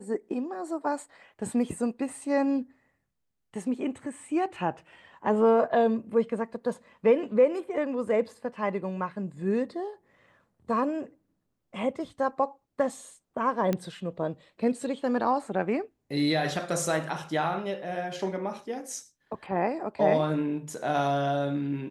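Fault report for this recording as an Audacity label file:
13.730000	13.730000	click −15 dBFS

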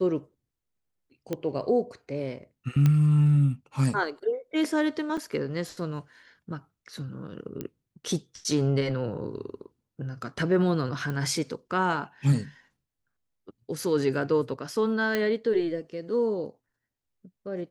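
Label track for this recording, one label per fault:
1.330000	1.330000	click −17 dBFS
2.860000	2.860000	click −12 dBFS
5.170000	5.180000	drop-out 5.5 ms
7.610000	7.610000	click −20 dBFS
11.100000	11.100000	click −21 dBFS
15.150000	15.150000	click −13 dBFS

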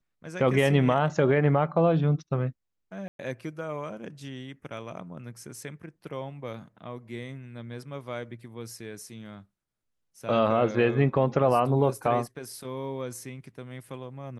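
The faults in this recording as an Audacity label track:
3.080000	3.190000	drop-out 112 ms

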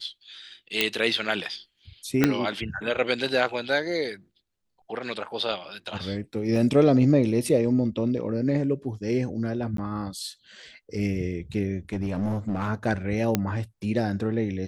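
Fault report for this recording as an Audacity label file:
0.810000	0.810000	click −6 dBFS
2.240000	2.240000	click −5 dBFS
6.560000	6.560000	drop-out 2.1 ms
9.770000	9.780000	drop-out 13 ms
11.930000	12.690000	clipping −22.5 dBFS
13.350000	13.350000	click −7 dBFS

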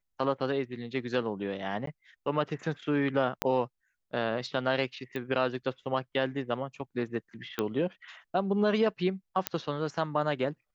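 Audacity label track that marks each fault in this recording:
1.860000	1.870000	drop-out 13 ms
3.420000	3.420000	click −11 dBFS
5.160000	5.160000	click −23 dBFS
7.590000	7.590000	click −15 dBFS
9.470000	9.470000	click −9 dBFS

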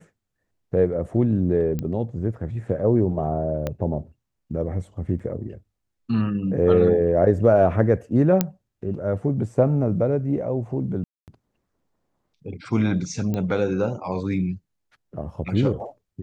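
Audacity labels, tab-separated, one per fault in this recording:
1.790000	1.790000	click −16 dBFS
3.670000	3.670000	click −14 dBFS
5.190000	5.200000	drop-out 5.4 ms
8.410000	8.410000	click −5 dBFS
11.040000	11.280000	drop-out 238 ms
13.340000	13.340000	click −15 dBFS

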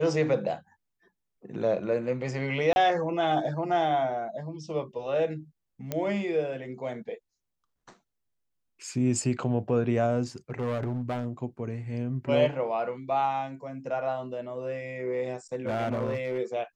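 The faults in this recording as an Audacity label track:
2.730000	2.760000	drop-out 31 ms
5.920000	5.920000	click −15 dBFS
10.500000	11.270000	clipping −26.5 dBFS
15.540000	16.390000	clipping −24.5 dBFS

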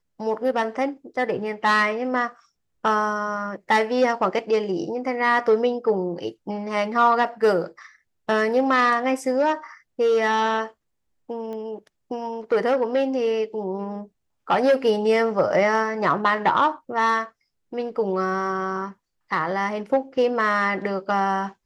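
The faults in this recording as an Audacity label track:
11.530000	11.530000	click −25 dBFS

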